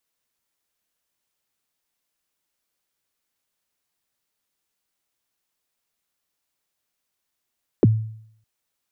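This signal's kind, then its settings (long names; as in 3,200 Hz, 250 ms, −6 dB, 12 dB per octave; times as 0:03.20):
synth kick length 0.61 s, from 490 Hz, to 110 Hz, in 27 ms, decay 0.66 s, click off, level −8.5 dB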